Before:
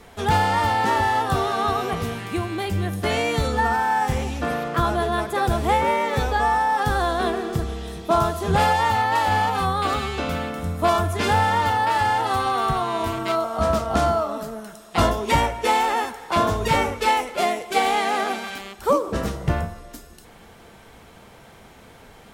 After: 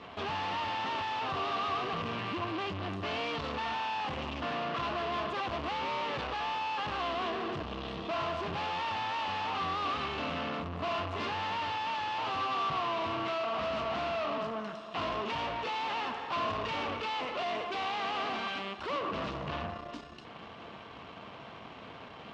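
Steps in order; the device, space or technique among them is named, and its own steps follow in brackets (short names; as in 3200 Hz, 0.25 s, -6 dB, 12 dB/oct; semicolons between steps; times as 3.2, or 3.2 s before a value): guitar amplifier (tube stage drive 38 dB, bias 0.75; tone controls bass +2 dB, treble +4 dB; speaker cabinet 100–4300 Hz, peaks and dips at 290 Hz +4 dB, 650 Hz +5 dB, 1100 Hz +10 dB, 2800 Hz +8 dB); gain +1 dB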